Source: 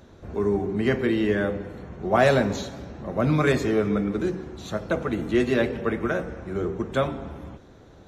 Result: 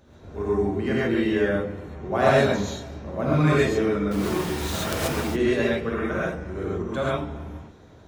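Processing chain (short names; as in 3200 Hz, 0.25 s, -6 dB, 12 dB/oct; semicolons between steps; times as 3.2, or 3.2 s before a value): 4.11–5.22 companded quantiser 2-bit; non-linear reverb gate 0.16 s rising, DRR -6.5 dB; gain -6.5 dB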